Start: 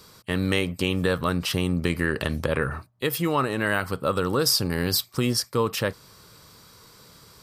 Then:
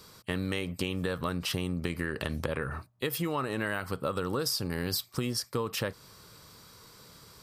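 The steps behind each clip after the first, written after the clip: compressor, threshold -25 dBFS, peak gain reduction 7.5 dB; gain -2.5 dB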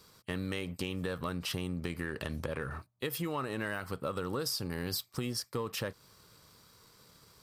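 sample leveller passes 1; gain -7.5 dB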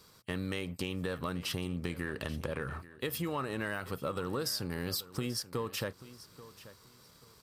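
feedback echo 0.835 s, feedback 23%, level -17 dB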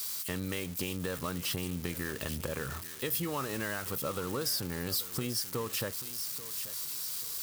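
switching spikes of -30.5 dBFS

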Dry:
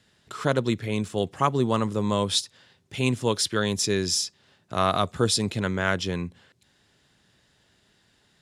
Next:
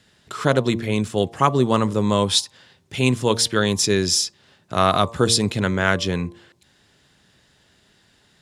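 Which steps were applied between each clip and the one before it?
de-hum 115.3 Hz, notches 10; gain +5.5 dB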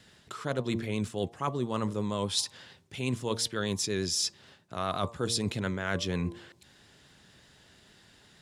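vibrato 8.5 Hz 35 cents; reverse; compressor 6:1, threshold -28 dBFS, peak gain reduction 16 dB; reverse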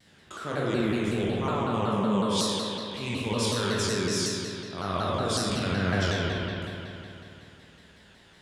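spectral trails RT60 0.96 s; spring tank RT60 3 s, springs 53 ms, chirp 75 ms, DRR -5.5 dB; shaped vibrato saw down 5.4 Hz, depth 160 cents; gain -4.5 dB

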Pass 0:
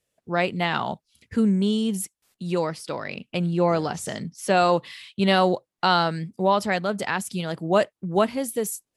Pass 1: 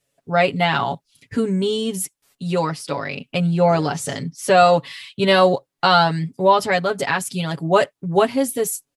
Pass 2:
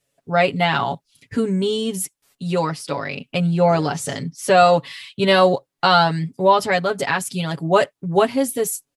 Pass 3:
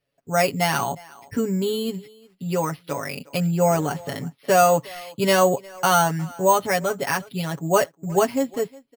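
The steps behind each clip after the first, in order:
comb 7.2 ms, depth 87%; gain +3 dB
nothing audible
speakerphone echo 0.36 s, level -21 dB; careless resampling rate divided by 6×, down filtered, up hold; gain -3 dB

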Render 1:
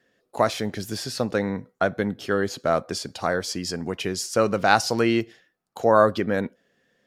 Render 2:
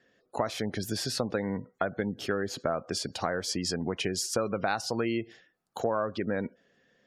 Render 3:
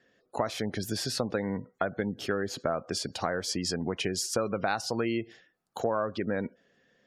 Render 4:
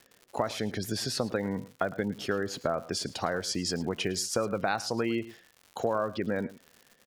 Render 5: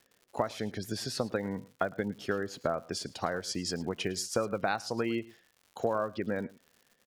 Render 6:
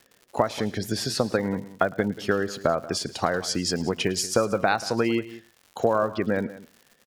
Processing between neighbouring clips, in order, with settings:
spectral gate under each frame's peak -30 dB strong; compressor 6:1, threshold -26 dBFS, peak gain reduction 14 dB
nothing audible
crackle 160/s -41 dBFS; echo 0.108 s -18 dB
upward expander 1.5:1, over -38 dBFS
echo 0.184 s -17 dB; gain +8 dB

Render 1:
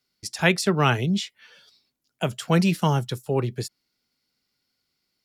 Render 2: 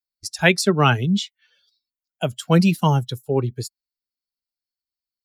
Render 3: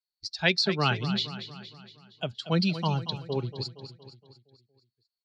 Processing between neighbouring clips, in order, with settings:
per-bin expansion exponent 1.5; gain +5.5 dB
ladder low-pass 4600 Hz, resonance 75%; on a send: feedback echo 0.233 s, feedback 53%, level -12 dB; on the sum: gain +2 dB

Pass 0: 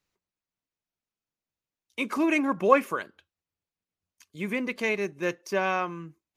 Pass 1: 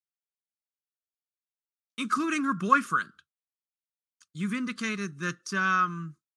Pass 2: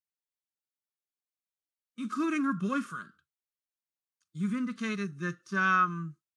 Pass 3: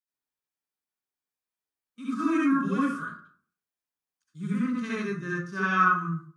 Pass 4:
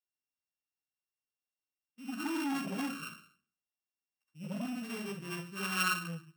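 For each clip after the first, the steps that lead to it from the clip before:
expander -50 dBFS; EQ curve 100 Hz 0 dB, 140 Hz +10 dB, 230 Hz +5 dB, 560 Hz -15 dB, 860 Hz -14 dB, 1300 Hz +15 dB, 2200 Hz -5 dB, 3600 Hz +6 dB, 9500 Hz +9 dB, 14000 Hz -15 dB; gain -3 dB
harmonic-percussive split percussive -17 dB
reverb RT60 0.50 s, pre-delay 58 ms, DRR -8 dB; gain -5 dB
sample sorter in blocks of 16 samples; core saturation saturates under 1300 Hz; gain -8 dB

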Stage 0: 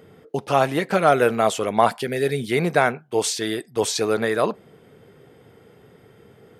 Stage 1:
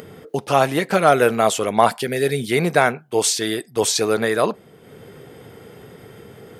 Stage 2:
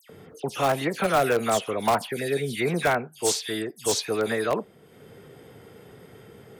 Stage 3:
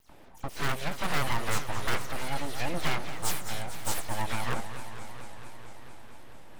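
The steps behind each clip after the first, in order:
high shelf 4900 Hz +5.5 dB; upward compressor, threshold -35 dBFS; gain +2 dB
dispersion lows, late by 97 ms, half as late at 2800 Hz; in parallel at -10 dB: wrapped overs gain 7.5 dB; on the sum: gain -8.5 dB
full-wave rectifier; warbling echo 0.224 s, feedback 78%, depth 185 cents, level -11.5 dB; gain -4 dB

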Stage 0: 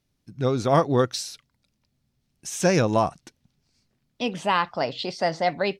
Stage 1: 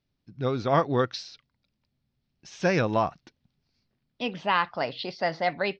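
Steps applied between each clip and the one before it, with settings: steep low-pass 5200 Hz 36 dB/oct; dynamic EQ 1800 Hz, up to +5 dB, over -36 dBFS, Q 0.82; gain -4.5 dB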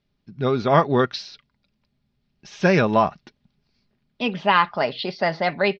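LPF 5000 Hz 12 dB/oct; comb 4.9 ms, depth 37%; gain +6 dB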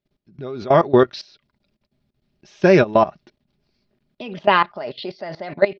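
level quantiser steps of 18 dB; small resonant body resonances 360/600 Hz, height 8 dB, ringing for 30 ms; gain +3 dB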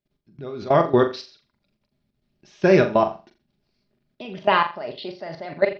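flutter echo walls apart 7.2 m, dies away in 0.31 s; gain -3.5 dB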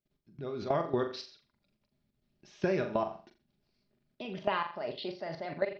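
compressor 6:1, threshold -22 dBFS, peak gain reduction 11.5 dB; gain -5 dB

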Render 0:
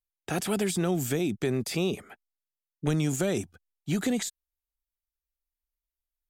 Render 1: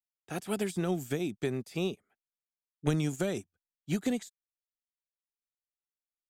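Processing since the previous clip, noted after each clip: upward expander 2.5:1, over -41 dBFS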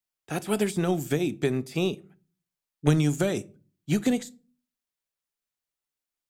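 shoebox room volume 220 m³, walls furnished, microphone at 0.31 m; gain +6 dB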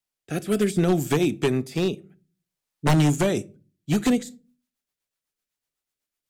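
wavefolder -18 dBFS; rotary speaker horn 0.6 Hz, later 8 Hz, at 3.76; gain +6 dB

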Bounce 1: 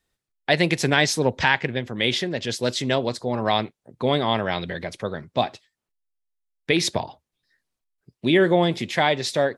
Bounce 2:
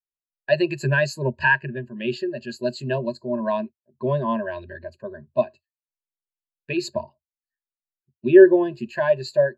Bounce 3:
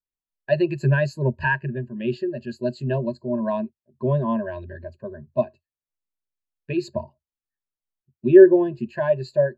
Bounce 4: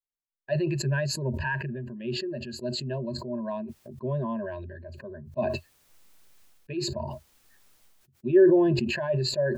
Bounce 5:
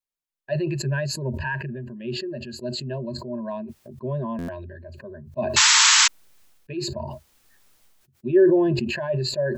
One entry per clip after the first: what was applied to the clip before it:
ripple EQ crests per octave 1.4, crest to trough 17 dB; spectral expander 1.5:1
tilt -2.5 dB/oct; gain -3 dB
sustainer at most 29 dB/s; gain -8.5 dB
painted sound noise, 5.56–6.08, 850–7900 Hz -17 dBFS; stuck buffer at 4.38, samples 512, times 8; gain +1.5 dB

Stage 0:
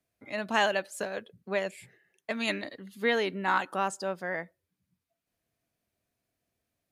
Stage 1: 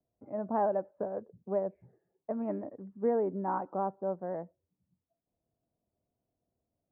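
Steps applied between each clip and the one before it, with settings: inverse Chebyshev low-pass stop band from 3900 Hz, stop band 70 dB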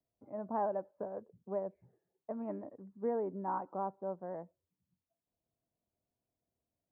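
bell 1000 Hz +4 dB 0.45 oct; gain -6 dB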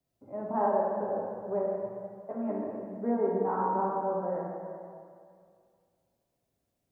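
plate-style reverb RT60 2.2 s, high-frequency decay 0.95×, DRR -4.5 dB; gain +3 dB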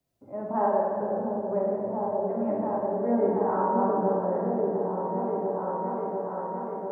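repeats that get brighter 0.697 s, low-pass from 400 Hz, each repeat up 1 oct, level 0 dB; gain +2.5 dB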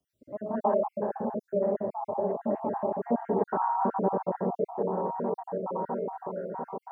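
random spectral dropouts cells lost 46%

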